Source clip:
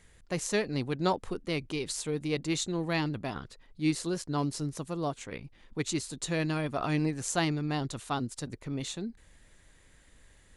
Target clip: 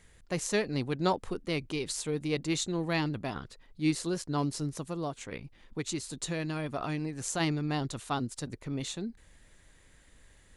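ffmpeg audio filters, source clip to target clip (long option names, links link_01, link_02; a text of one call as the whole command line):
ffmpeg -i in.wav -filter_complex "[0:a]asplit=3[link_01][link_02][link_03];[link_01]afade=type=out:start_time=4.78:duration=0.02[link_04];[link_02]acompressor=threshold=-30dB:ratio=6,afade=type=in:start_time=4.78:duration=0.02,afade=type=out:start_time=7.39:duration=0.02[link_05];[link_03]afade=type=in:start_time=7.39:duration=0.02[link_06];[link_04][link_05][link_06]amix=inputs=3:normalize=0" out.wav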